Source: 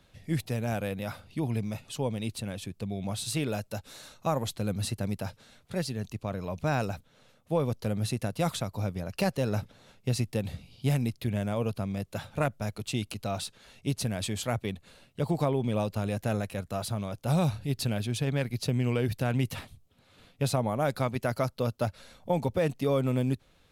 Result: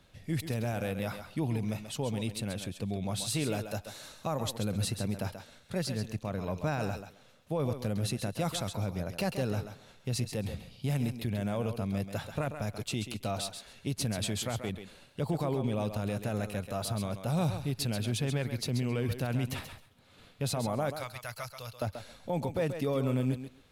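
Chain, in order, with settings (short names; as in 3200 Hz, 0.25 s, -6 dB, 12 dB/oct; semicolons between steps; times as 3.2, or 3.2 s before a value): 20.9–21.82 passive tone stack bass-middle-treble 10-0-10; limiter -22.5 dBFS, peak gain reduction 8 dB; thinning echo 0.134 s, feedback 17%, high-pass 220 Hz, level -8 dB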